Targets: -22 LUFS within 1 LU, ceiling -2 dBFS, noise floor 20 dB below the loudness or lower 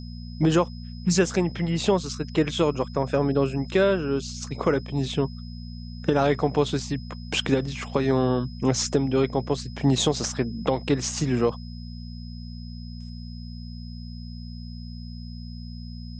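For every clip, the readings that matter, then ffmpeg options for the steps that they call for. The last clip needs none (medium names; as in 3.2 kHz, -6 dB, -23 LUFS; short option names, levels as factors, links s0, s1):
hum 60 Hz; highest harmonic 240 Hz; hum level -35 dBFS; steady tone 5.1 kHz; tone level -48 dBFS; loudness -25.0 LUFS; peak level -7.5 dBFS; loudness target -22.0 LUFS
-> -af "bandreject=f=60:t=h:w=4,bandreject=f=120:t=h:w=4,bandreject=f=180:t=h:w=4,bandreject=f=240:t=h:w=4"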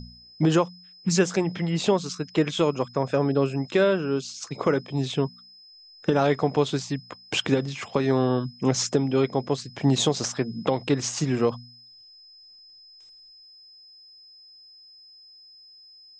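hum not found; steady tone 5.1 kHz; tone level -48 dBFS
-> -af "bandreject=f=5100:w=30"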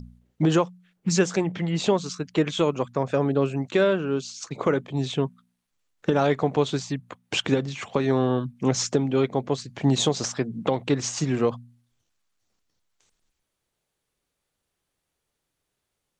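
steady tone not found; loudness -25.0 LUFS; peak level -7.0 dBFS; loudness target -22.0 LUFS
-> -af "volume=1.41"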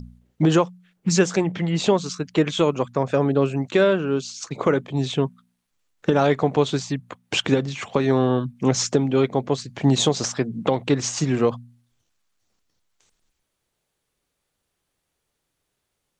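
loudness -22.0 LUFS; peak level -4.0 dBFS; noise floor -78 dBFS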